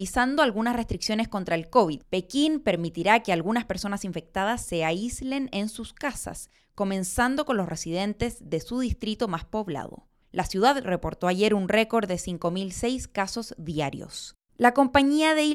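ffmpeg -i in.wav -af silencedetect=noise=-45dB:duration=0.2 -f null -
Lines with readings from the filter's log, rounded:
silence_start: 6.45
silence_end: 6.78 | silence_duration: 0.33
silence_start: 9.99
silence_end: 10.34 | silence_duration: 0.35
silence_start: 14.31
silence_end: 14.59 | silence_duration: 0.29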